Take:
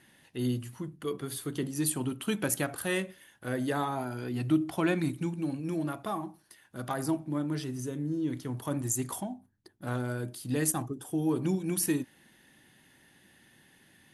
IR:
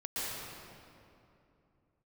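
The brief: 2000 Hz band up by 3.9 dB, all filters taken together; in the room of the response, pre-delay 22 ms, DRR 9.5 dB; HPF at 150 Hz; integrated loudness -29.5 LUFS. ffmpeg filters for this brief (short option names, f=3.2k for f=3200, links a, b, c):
-filter_complex "[0:a]highpass=150,equalizer=f=2k:t=o:g=5,asplit=2[a][b];[1:a]atrim=start_sample=2205,adelay=22[c];[b][c]afir=irnorm=-1:irlink=0,volume=-14.5dB[d];[a][d]amix=inputs=2:normalize=0,volume=2.5dB"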